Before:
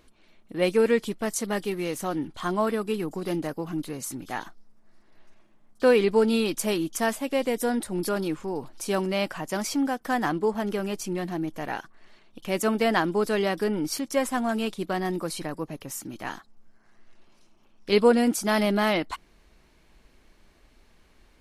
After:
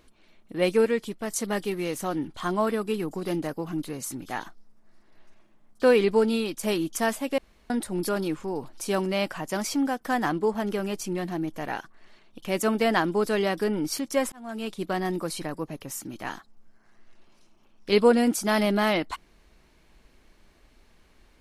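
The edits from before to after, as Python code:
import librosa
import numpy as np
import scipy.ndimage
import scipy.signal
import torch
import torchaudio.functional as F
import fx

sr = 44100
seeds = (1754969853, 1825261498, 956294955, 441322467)

y = fx.edit(x, sr, fx.clip_gain(start_s=0.85, length_s=0.45, db=-3.5),
    fx.fade_out_to(start_s=6.13, length_s=0.5, floor_db=-6.5),
    fx.room_tone_fill(start_s=7.38, length_s=0.32),
    fx.fade_in_span(start_s=14.32, length_s=0.53), tone=tone)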